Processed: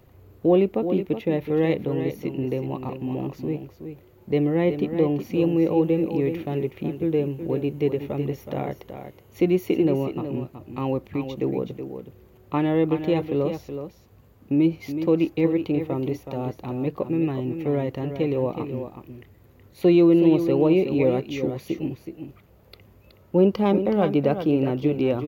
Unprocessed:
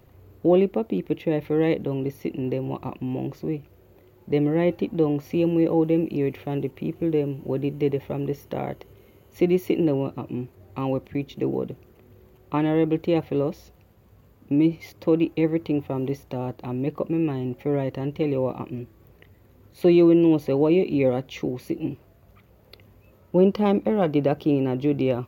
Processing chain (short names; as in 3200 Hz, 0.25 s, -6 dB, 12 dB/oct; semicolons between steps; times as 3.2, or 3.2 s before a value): echo 0.372 s -9 dB